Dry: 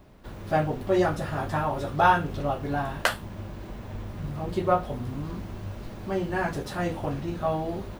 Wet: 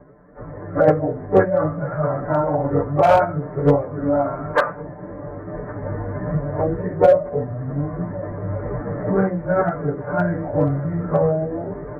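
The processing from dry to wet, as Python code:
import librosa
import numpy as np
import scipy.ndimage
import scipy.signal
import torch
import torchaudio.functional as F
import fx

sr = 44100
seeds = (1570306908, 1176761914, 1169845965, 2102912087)

p1 = fx.recorder_agc(x, sr, target_db=-15.5, rise_db_per_s=9.2, max_gain_db=30)
p2 = fx.stretch_vocoder_free(p1, sr, factor=1.5)
p3 = scipy.signal.sosfilt(scipy.signal.butter(12, 2300.0, 'lowpass', fs=sr, output='sos'), p2)
p4 = p3 + 0.94 * np.pad(p3, (int(6.8 * sr / 1000.0), 0))[:len(p3)]
p5 = p4 + fx.echo_single(p4, sr, ms=1113, db=-21.5, dry=0)
p6 = np.clip(10.0 ** (14.0 / 20.0) * p5, -1.0, 1.0) / 10.0 ** (14.0 / 20.0)
p7 = fx.highpass(p6, sr, hz=99.0, slope=6)
p8 = fx.peak_eq(p7, sr, hz=620.0, db=8.0, octaves=0.55)
p9 = fx.formant_shift(p8, sr, semitones=-3)
y = p9 * 10.0 ** (3.5 / 20.0)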